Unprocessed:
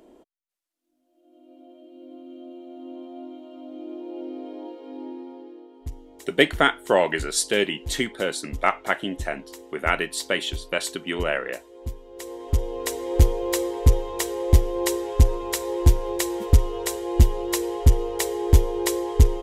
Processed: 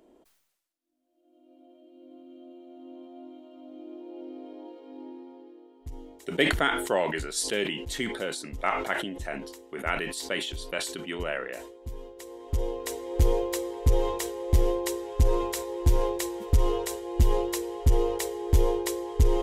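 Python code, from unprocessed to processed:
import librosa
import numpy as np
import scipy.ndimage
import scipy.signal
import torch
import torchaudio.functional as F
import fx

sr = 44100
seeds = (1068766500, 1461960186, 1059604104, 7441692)

y = fx.sustainer(x, sr, db_per_s=58.0)
y = y * 10.0 ** (-7.0 / 20.0)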